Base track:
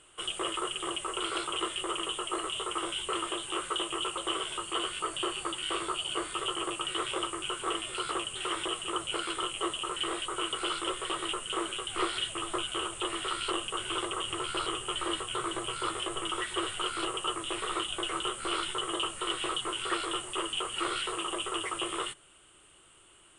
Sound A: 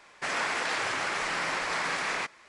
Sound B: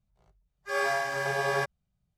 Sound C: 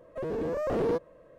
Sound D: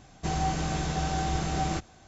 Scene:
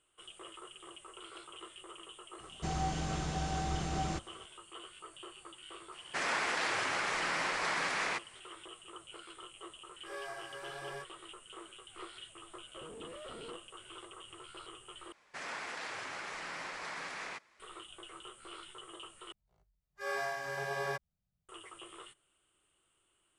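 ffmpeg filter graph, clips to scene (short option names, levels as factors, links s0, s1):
-filter_complex "[1:a]asplit=2[s0][s1];[2:a]asplit=2[s2][s3];[0:a]volume=0.141[s4];[s2]flanger=delay=19.5:depth=5.5:speed=1.2[s5];[3:a]alimiter=level_in=1.26:limit=0.0631:level=0:latency=1:release=71,volume=0.794[s6];[s4]asplit=3[s7][s8][s9];[s7]atrim=end=15.124[s10];[s1]atrim=end=2.48,asetpts=PTS-STARTPTS,volume=0.251[s11];[s8]atrim=start=17.596:end=19.324[s12];[s3]atrim=end=2.17,asetpts=PTS-STARTPTS,volume=0.376[s13];[s9]atrim=start=21.486[s14];[4:a]atrim=end=2.07,asetpts=PTS-STARTPTS,volume=0.473,afade=t=in:d=0.004:c=hsin,afade=t=out:st=2.066:d=0.004:c=hsin,adelay=2390[s15];[s0]atrim=end=2.48,asetpts=PTS-STARTPTS,volume=0.668,afade=t=in:d=0.004:c=hsin,afade=t=out:st=2.476:d=0.004:c=hsin,adelay=5920[s16];[s5]atrim=end=2.17,asetpts=PTS-STARTPTS,volume=0.2,afade=t=in:d=0.004:c=hsin,afade=t=out:st=2.166:d=0.004:c=hsin,adelay=9370[s17];[s6]atrim=end=1.38,asetpts=PTS-STARTPTS,volume=0.133,afade=t=in:d=0.004:c=hsin,afade=t=out:st=1.376:d=0.004:c=hsin,adelay=12590[s18];[s10][s11]acrossfade=d=0.004:c1=hsin:c2=hsin[s19];[s19][s12]acrossfade=d=0.004:c1=hsin:c2=hsin[s20];[s20][s13]acrossfade=d=0.004:c1=hsin:c2=hsin[s21];[s21][s14]acrossfade=d=0.004:c1=hsin:c2=hsin[s22];[s22][s15][s16][s17][s18]amix=inputs=5:normalize=0"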